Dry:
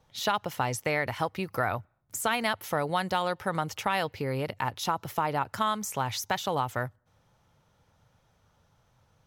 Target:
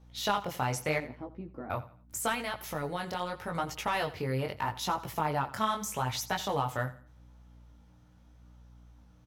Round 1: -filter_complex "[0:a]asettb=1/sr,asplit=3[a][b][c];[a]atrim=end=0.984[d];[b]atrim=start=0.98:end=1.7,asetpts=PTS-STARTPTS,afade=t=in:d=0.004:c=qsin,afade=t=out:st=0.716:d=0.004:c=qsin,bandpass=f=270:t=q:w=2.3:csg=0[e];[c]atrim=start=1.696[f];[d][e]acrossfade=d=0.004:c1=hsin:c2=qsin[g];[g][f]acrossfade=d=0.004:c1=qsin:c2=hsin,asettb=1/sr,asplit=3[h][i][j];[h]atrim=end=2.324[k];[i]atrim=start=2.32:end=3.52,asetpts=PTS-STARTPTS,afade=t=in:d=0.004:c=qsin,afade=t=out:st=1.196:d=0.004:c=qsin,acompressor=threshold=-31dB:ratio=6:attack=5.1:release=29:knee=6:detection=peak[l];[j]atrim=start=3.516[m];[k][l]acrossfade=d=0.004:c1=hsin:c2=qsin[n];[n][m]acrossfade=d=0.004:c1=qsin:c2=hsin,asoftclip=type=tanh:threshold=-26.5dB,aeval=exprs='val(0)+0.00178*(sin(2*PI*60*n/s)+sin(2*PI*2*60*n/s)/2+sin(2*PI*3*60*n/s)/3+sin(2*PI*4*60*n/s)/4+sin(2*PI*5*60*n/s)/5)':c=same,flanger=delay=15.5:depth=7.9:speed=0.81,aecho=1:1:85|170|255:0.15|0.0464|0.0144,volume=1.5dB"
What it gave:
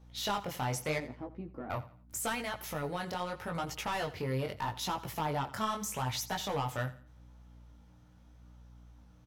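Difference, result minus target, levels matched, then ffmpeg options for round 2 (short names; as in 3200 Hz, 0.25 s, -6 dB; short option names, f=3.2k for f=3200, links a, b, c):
soft clip: distortion +12 dB
-filter_complex "[0:a]asettb=1/sr,asplit=3[a][b][c];[a]atrim=end=0.984[d];[b]atrim=start=0.98:end=1.7,asetpts=PTS-STARTPTS,afade=t=in:d=0.004:c=qsin,afade=t=out:st=0.716:d=0.004:c=qsin,bandpass=f=270:t=q:w=2.3:csg=0[e];[c]atrim=start=1.696[f];[d][e]acrossfade=d=0.004:c1=hsin:c2=qsin[g];[g][f]acrossfade=d=0.004:c1=qsin:c2=hsin,asettb=1/sr,asplit=3[h][i][j];[h]atrim=end=2.324[k];[i]atrim=start=2.32:end=3.52,asetpts=PTS-STARTPTS,afade=t=in:d=0.004:c=qsin,afade=t=out:st=1.196:d=0.004:c=qsin,acompressor=threshold=-31dB:ratio=6:attack=5.1:release=29:knee=6:detection=peak[l];[j]atrim=start=3.516[m];[k][l]acrossfade=d=0.004:c1=hsin:c2=qsin[n];[n][m]acrossfade=d=0.004:c1=qsin:c2=hsin,asoftclip=type=tanh:threshold=-16dB,aeval=exprs='val(0)+0.00178*(sin(2*PI*60*n/s)+sin(2*PI*2*60*n/s)/2+sin(2*PI*3*60*n/s)/3+sin(2*PI*4*60*n/s)/4+sin(2*PI*5*60*n/s)/5)':c=same,flanger=delay=15.5:depth=7.9:speed=0.81,aecho=1:1:85|170|255:0.15|0.0464|0.0144,volume=1.5dB"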